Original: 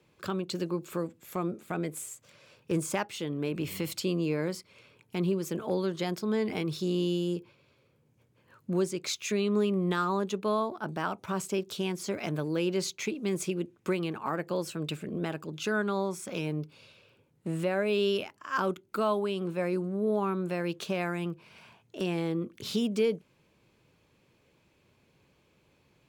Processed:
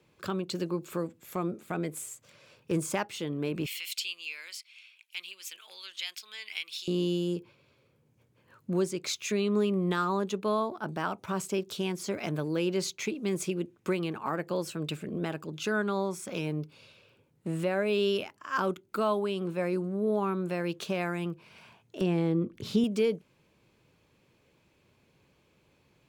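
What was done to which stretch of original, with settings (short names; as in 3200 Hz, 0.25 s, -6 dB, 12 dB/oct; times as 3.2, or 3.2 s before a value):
3.66–6.88 resonant high-pass 2700 Hz, resonance Q 2.3
22.01–22.84 tilt -2 dB/oct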